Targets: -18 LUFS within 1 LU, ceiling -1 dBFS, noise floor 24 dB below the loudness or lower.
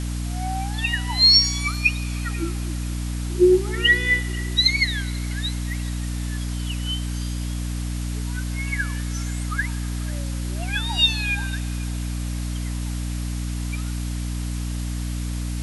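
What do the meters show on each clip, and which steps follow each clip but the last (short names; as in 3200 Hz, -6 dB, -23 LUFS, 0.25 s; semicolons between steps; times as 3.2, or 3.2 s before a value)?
hum 60 Hz; harmonics up to 300 Hz; hum level -24 dBFS; noise floor -27 dBFS; noise floor target -47 dBFS; loudness -23.0 LUFS; peak -5.0 dBFS; loudness target -18.0 LUFS
-> notches 60/120/180/240/300 Hz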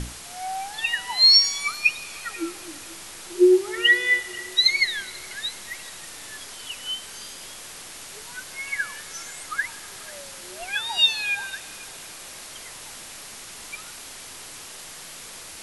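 hum none; noise floor -41 dBFS; noise floor target -45 dBFS
-> noise print and reduce 6 dB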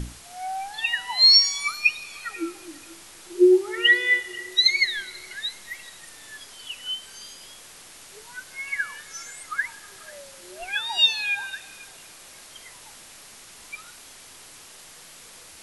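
noise floor -47 dBFS; loudness -21.0 LUFS; peak -6.0 dBFS; loudness target -18.0 LUFS
-> gain +3 dB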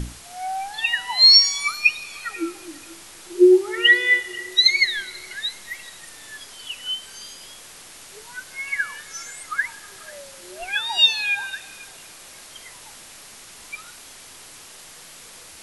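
loudness -18.0 LUFS; peak -3.0 dBFS; noise floor -44 dBFS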